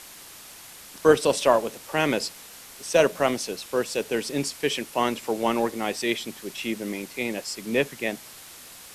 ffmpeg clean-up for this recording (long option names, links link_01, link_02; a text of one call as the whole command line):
ffmpeg -i in.wav -af "adeclick=threshold=4,afwtdn=0.0071" out.wav